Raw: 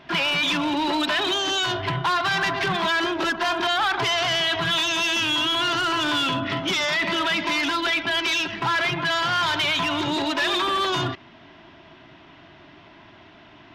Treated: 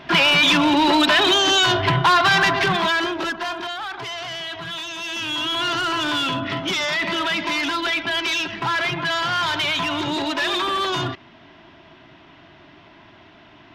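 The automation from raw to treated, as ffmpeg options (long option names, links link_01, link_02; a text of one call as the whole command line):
ffmpeg -i in.wav -af "volume=15.5dB,afade=type=out:start_time=2.29:duration=0.83:silence=0.446684,afade=type=out:start_time=3.12:duration=0.65:silence=0.398107,afade=type=in:start_time=4.98:duration=0.7:silence=0.375837" out.wav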